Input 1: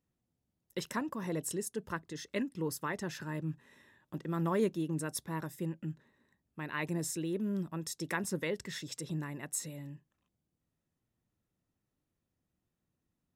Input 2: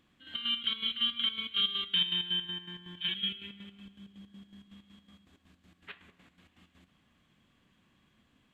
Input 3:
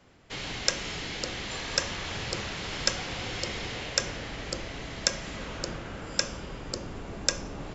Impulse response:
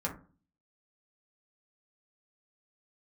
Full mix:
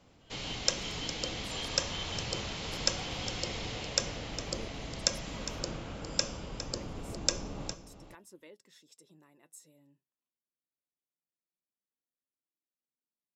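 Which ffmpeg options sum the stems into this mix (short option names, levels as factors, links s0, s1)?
-filter_complex "[0:a]flanger=delay=2.9:depth=5.6:regen=64:speed=0.24:shape=triangular,highpass=290,volume=0.251[s0];[1:a]volume=0.211[s1];[2:a]bandreject=f=380:w=12,volume=0.794,asplit=2[s2][s3];[s3]volume=0.251,aecho=0:1:408:1[s4];[s0][s1][s2][s4]amix=inputs=4:normalize=0,equalizer=f=1700:w=1.7:g=-7"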